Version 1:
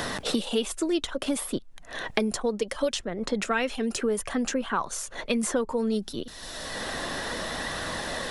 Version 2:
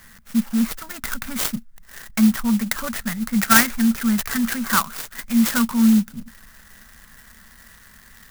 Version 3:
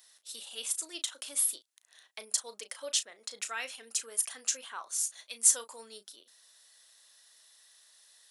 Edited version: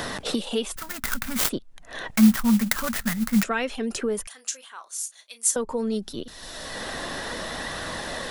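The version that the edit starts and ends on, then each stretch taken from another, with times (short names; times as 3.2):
1
0.76–1.49 from 2
2.16–3.43 from 2
4.27–5.56 from 3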